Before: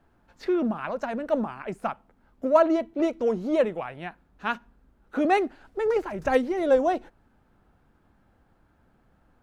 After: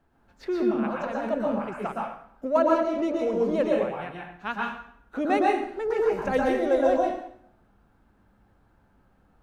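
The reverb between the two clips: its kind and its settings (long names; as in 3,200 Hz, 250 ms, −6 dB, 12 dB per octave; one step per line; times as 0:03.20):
dense smooth reverb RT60 0.66 s, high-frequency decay 0.85×, pre-delay 105 ms, DRR −2.5 dB
level −4 dB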